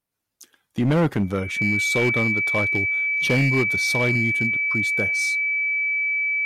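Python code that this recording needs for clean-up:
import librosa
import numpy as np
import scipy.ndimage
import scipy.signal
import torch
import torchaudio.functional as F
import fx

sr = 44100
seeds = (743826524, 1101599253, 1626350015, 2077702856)

y = fx.fix_declip(x, sr, threshold_db=-14.5)
y = fx.notch(y, sr, hz=2300.0, q=30.0)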